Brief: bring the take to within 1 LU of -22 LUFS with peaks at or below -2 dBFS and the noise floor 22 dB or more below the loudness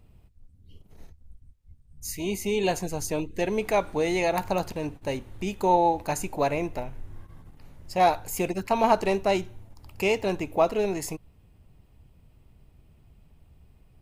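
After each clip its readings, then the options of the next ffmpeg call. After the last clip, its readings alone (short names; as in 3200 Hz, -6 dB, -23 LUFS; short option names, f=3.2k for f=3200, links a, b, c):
loudness -26.5 LUFS; peak -7.0 dBFS; loudness target -22.0 LUFS
-> -af "volume=4.5dB"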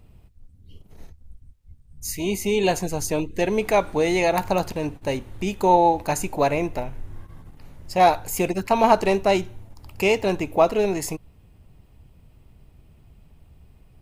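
loudness -22.0 LUFS; peak -2.5 dBFS; noise floor -54 dBFS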